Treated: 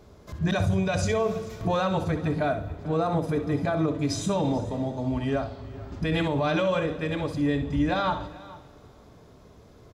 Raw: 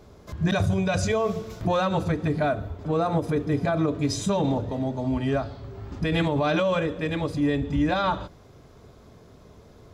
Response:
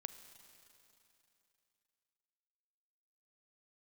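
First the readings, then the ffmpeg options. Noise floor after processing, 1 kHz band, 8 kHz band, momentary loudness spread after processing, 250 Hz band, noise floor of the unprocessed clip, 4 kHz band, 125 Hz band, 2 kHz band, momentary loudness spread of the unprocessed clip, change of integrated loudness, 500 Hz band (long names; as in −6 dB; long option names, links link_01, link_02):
−52 dBFS, −1.5 dB, −1.5 dB, 7 LU, −1.5 dB, −51 dBFS, −1.5 dB, −1.5 dB, −1.5 dB, 7 LU, −1.5 dB, −1.5 dB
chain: -filter_complex "[0:a]aecho=1:1:438:0.1,asplit=2[link_01][link_02];[1:a]atrim=start_sample=2205,adelay=63[link_03];[link_02][link_03]afir=irnorm=-1:irlink=0,volume=-6.5dB[link_04];[link_01][link_04]amix=inputs=2:normalize=0,volume=-2dB"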